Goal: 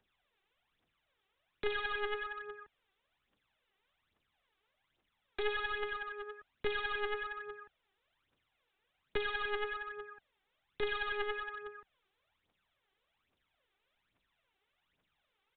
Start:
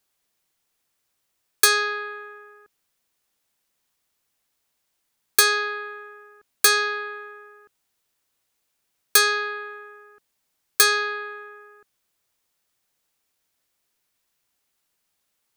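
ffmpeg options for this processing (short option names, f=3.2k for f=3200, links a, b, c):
-filter_complex "[0:a]acrossover=split=330[a][b];[b]acompressor=threshold=-33dB:ratio=4[c];[a][c]amix=inputs=2:normalize=0,aphaser=in_gain=1:out_gain=1:delay=2.7:decay=0.71:speed=1.2:type=triangular,aresample=8000,aeval=exprs='clip(val(0),-1,0.0133)':c=same,aresample=44100,volume=-2dB"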